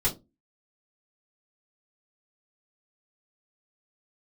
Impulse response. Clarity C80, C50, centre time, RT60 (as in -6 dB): 23.0 dB, 15.0 dB, 15 ms, 0.25 s